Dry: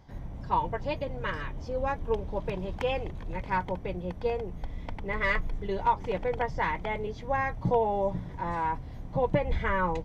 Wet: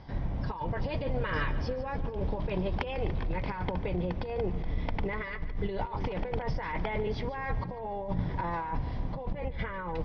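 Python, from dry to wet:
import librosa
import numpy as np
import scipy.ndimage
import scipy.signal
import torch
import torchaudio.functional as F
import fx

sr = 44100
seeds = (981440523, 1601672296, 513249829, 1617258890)

y = scipy.signal.sosfilt(scipy.signal.ellip(4, 1.0, 40, 5300.0, 'lowpass', fs=sr, output='sos'), x)
y = fx.over_compress(y, sr, threshold_db=-36.0, ratio=-1.0)
y = fx.echo_split(y, sr, split_hz=320.0, low_ms=612, high_ms=146, feedback_pct=52, wet_db=-15.5)
y = F.gain(torch.from_numpy(y), 3.5).numpy()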